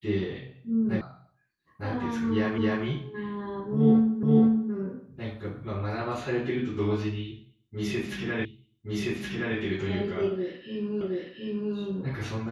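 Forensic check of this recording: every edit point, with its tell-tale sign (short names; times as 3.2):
1.01 sound cut off
2.58 repeat of the last 0.27 s
4.23 repeat of the last 0.48 s
8.45 repeat of the last 1.12 s
11.01 repeat of the last 0.72 s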